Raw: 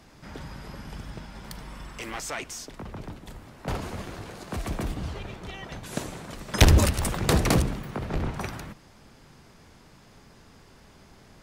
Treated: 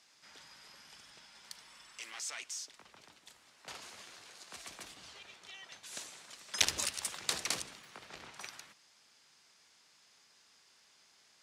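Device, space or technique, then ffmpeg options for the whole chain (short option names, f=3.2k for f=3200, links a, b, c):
piezo pickup straight into a mixer: -af "lowpass=6.3k,aderivative,volume=1.5dB"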